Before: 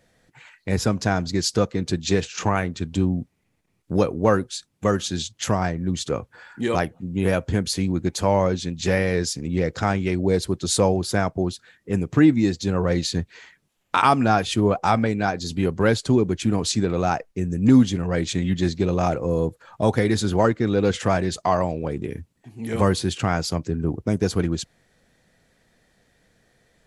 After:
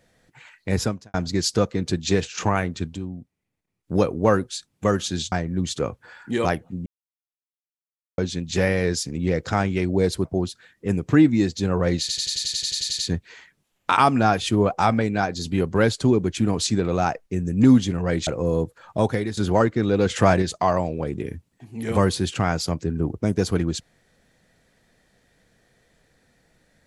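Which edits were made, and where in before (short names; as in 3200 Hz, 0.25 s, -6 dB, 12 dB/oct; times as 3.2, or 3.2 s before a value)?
0.83–1.14 fade out quadratic
2.86–3.95 dip -11 dB, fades 0.13 s
5.32–5.62 cut
7.16–8.48 mute
10.55–11.29 cut
13.04 stutter 0.09 s, 12 plays
18.32–19.11 cut
19.81–20.21 fade out, to -11.5 dB
20.98–21.26 gain +4 dB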